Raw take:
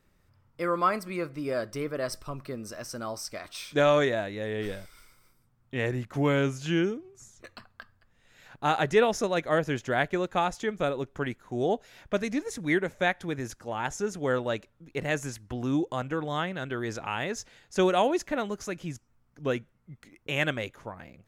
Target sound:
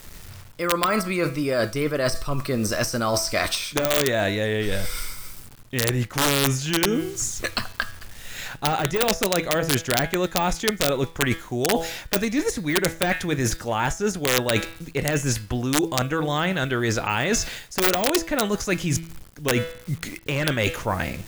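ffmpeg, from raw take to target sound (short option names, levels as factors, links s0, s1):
-af "acrusher=bits=10:mix=0:aa=0.000001,bandreject=f=164.6:t=h:w=4,bandreject=f=329.2:t=h:w=4,bandreject=f=493.8:t=h:w=4,bandreject=f=658.4:t=h:w=4,bandreject=f=823:t=h:w=4,bandreject=f=987.6:t=h:w=4,bandreject=f=1152.2:t=h:w=4,bandreject=f=1316.8:t=h:w=4,bandreject=f=1481.4:t=h:w=4,bandreject=f=1646:t=h:w=4,bandreject=f=1810.6:t=h:w=4,bandreject=f=1975.2:t=h:w=4,bandreject=f=2139.8:t=h:w=4,bandreject=f=2304.4:t=h:w=4,bandreject=f=2469:t=h:w=4,bandreject=f=2633.6:t=h:w=4,bandreject=f=2798.2:t=h:w=4,bandreject=f=2962.8:t=h:w=4,bandreject=f=3127.4:t=h:w=4,bandreject=f=3292:t=h:w=4,bandreject=f=3456.6:t=h:w=4,bandreject=f=3621.2:t=h:w=4,bandreject=f=3785.8:t=h:w=4,bandreject=f=3950.4:t=h:w=4,bandreject=f=4115:t=h:w=4,bandreject=f=4279.6:t=h:w=4,bandreject=f=4444.2:t=h:w=4,bandreject=f=4608.8:t=h:w=4,bandreject=f=4773.4:t=h:w=4,bandreject=f=4938:t=h:w=4,apsyclip=6.68,lowshelf=f=74:g=10.5,deesser=0.55,aeval=exprs='(mod(1.19*val(0)+1,2)-1)/1.19':c=same,areverse,acompressor=threshold=0.0794:ratio=12,areverse,highshelf=f=2200:g=8.5,volume=1.19"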